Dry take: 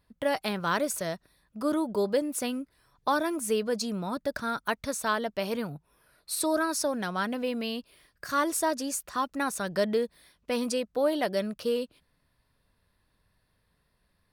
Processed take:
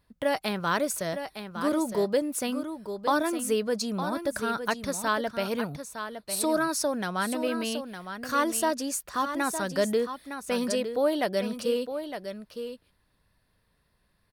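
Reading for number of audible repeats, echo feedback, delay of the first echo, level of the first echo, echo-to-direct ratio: 1, no regular repeats, 910 ms, -9.0 dB, -9.0 dB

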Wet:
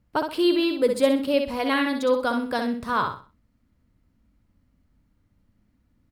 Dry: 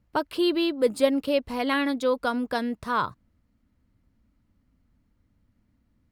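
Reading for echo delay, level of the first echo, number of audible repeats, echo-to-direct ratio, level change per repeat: 63 ms, -6.0 dB, 3, -5.5 dB, -10.5 dB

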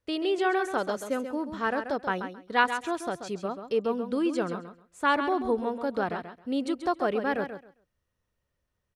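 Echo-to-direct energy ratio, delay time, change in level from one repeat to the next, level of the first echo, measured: -9.0 dB, 134 ms, -14.5 dB, -9.0 dB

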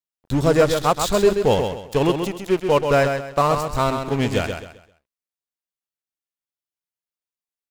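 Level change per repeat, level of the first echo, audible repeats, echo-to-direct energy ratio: -10.0 dB, -6.5 dB, 3, -6.0 dB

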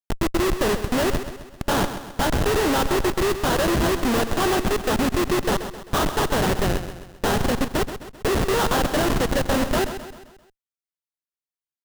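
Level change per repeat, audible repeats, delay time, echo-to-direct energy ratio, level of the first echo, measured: -6.0 dB, 4, 131 ms, -9.5 dB, -10.5 dB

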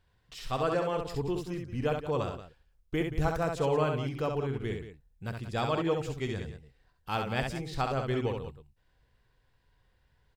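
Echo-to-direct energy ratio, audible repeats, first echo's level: -4.0 dB, 2, -5.0 dB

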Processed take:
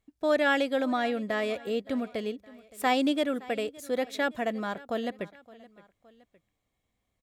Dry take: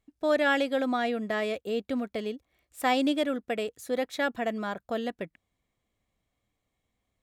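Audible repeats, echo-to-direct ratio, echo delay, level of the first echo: 2, -20.0 dB, 567 ms, -21.0 dB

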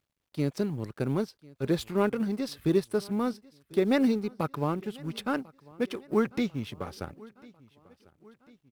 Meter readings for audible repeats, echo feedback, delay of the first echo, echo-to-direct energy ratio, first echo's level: 3, 53%, 1046 ms, -22.0 dB, -23.5 dB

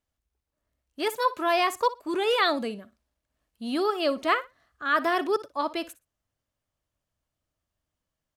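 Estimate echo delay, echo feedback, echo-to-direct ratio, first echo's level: 60 ms, 17%, -17.0 dB, -17.0 dB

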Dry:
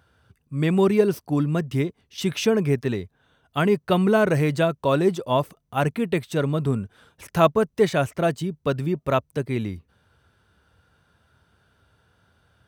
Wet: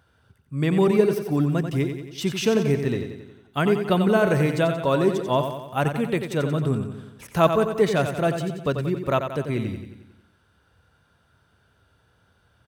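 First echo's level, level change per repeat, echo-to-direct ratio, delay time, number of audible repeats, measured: -8.0 dB, -5.0 dB, -6.5 dB, 90 ms, 6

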